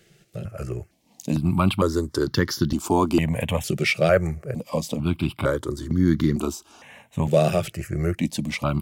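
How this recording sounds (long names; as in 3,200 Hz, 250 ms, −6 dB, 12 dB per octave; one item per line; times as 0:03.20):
notches that jump at a steady rate 2.2 Hz 270–2,500 Hz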